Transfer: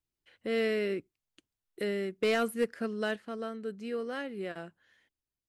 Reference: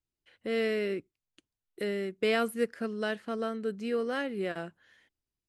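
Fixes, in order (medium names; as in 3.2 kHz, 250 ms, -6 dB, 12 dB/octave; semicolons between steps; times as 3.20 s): clip repair -20.5 dBFS; trim 0 dB, from 3.16 s +4.5 dB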